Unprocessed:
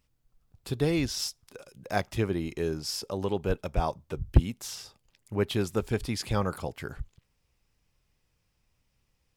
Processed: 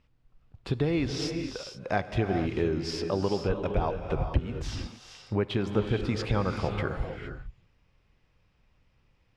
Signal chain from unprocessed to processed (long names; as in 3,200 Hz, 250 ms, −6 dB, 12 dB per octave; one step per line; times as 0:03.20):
low-pass filter 3,100 Hz 12 dB per octave
downward compressor 4 to 1, threshold −31 dBFS, peak gain reduction 15.5 dB
reverb whose tail is shaped and stops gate 490 ms rising, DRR 5.5 dB
level +6.5 dB